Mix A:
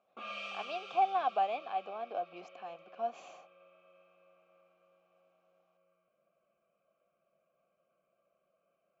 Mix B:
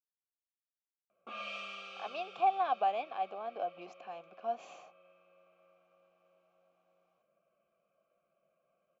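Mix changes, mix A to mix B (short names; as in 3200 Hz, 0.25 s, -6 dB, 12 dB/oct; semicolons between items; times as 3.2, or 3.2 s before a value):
speech: entry +1.45 s; background: entry +1.10 s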